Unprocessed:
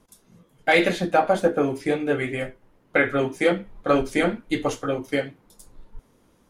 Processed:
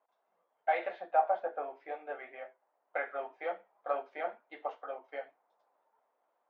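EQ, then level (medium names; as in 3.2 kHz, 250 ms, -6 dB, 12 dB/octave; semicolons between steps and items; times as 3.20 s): ladder band-pass 790 Hz, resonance 60%; distance through air 260 m; tilt EQ +3.5 dB/octave; 0.0 dB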